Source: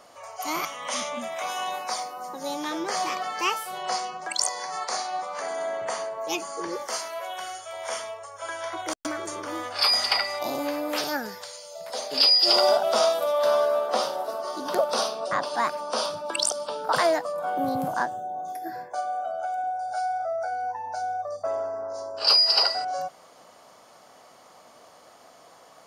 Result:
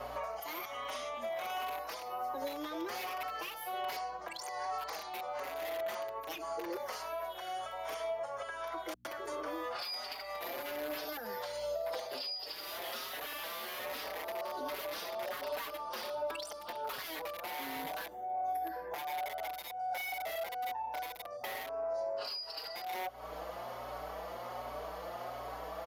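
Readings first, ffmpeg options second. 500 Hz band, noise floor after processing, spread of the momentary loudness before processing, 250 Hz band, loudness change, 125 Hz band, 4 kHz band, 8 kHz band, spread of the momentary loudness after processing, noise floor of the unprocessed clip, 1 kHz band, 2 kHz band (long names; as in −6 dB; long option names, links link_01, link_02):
−11.5 dB, −46 dBFS, 14 LU, −12.5 dB, −13.5 dB, −10.0 dB, −18.0 dB, −17.0 dB, 5 LU, −52 dBFS, −10.0 dB, −9.0 dB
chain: -filter_complex "[0:a]acrossover=split=320|1300|4600[link_01][link_02][link_03][link_04];[link_02]aeval=exprs='(mod(21.1*val(0)+1,2)-1)/21.1':channel_layout=same[link_05];[link_01][link_05][link_03][link_04]amix=inputs=4:normalize=0,acrossover=split=150|3000[link_06][link_07][link_08];[link_07]acompressor=threshold=-34dB:ratio=6[link_09];[link_06][link_09][link_08]amix=inputs=3:normalize=0,aresample=32000,aresample=44100,aexciter=amount=9.1:drive=5.3:freq=11000,acrossover=split=270 4100:gain=0.126 1 0.178[link_10][link_11][link_12];[link_10][link_11][link_12]amix=inputs=3:normalize=0,aeval=exprs='val(0)+0.000794*(sin(2*PI*60*n/s)+sin(2*PI*2*60*n/s)/2+sin(2*PI*3*60*n/s)/3+sin(2*PI*4*60*n/s)/4+sin(2*PI*5*60*n/s)/5)':channel_layout=same,acompressor=threshold=-46dB:ratio=12,asoftclip=type=tanh:threshold=-39.5dB,equalizer=frequency=570:width=0.68:gain=5,asplit=2[link_13][link_14];[link_14]adelay=5,afreqshift=1.3[link_15];[link_13][link_15]amix=inputs=2:normalize=1,volume=10dB"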